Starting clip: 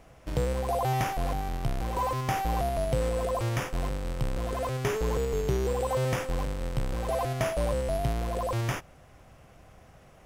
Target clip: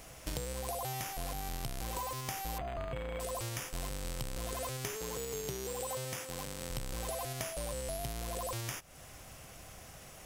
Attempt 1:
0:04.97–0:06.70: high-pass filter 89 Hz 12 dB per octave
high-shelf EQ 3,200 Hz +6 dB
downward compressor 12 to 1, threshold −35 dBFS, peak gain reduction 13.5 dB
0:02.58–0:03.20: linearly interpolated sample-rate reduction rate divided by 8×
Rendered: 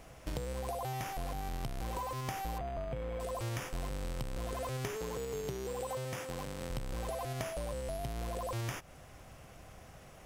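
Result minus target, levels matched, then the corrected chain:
8,000 Hz band −7.0 dB
0:04.97–0:06.70: high-pass filter 89 Hz 12 dB per octave
high-shelf EQ 3,200 Hz +17.5 dB
downward compressor 12 to 1, threshold −35 dBFS, peak gain reduction 15.5 dB
0:02.58–0:03.20: linearly interpolated sample-rate reduction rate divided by 8×

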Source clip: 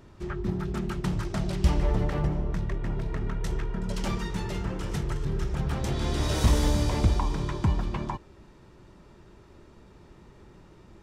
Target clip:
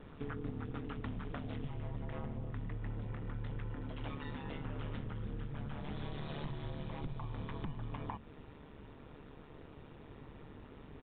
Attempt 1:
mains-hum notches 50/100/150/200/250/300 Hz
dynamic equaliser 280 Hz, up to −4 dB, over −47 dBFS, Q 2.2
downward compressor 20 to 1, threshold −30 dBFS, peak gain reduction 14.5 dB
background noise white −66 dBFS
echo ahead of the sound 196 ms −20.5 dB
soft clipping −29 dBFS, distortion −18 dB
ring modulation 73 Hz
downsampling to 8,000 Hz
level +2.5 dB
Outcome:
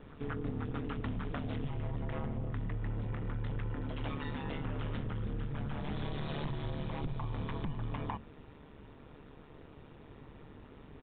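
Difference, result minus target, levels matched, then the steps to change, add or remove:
downward compressor: peak gain reduction −5.5 dB
change: downward compressor 20 to 1, threshold −36 dBFS, peak gain reduction 20 dB

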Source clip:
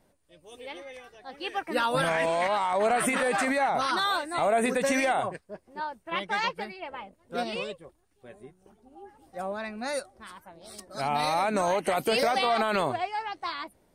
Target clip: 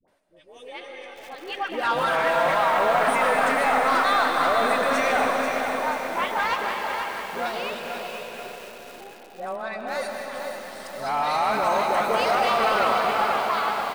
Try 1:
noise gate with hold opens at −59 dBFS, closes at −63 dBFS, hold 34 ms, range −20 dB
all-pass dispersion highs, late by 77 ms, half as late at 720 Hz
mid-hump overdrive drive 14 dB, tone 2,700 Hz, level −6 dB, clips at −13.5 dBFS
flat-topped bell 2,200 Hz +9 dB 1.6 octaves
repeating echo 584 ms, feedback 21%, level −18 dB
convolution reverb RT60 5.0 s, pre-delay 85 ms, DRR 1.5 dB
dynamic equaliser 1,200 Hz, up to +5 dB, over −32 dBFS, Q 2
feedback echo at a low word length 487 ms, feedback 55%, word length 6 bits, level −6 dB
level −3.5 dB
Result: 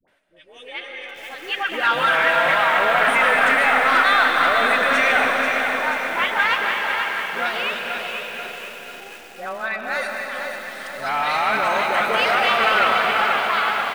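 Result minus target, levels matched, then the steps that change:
2,000 Hz band +4.5 dB
remove: flat-topped bell 2,200 Hz +9 dB 1.6 octaves

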